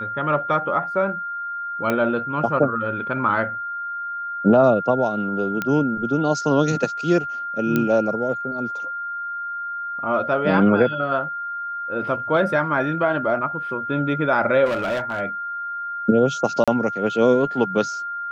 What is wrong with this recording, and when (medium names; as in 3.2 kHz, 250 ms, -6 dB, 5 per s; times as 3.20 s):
whine 1.4 kHz -26 dBFS
1.90 s: pop -9 dBFS
5.62 s: pop -10 dBFS
7.76 s: pop -8 dBFS
14.65–15.21 s: clipped -20 dBFS
16.64–16.68 s: dropout 36 ms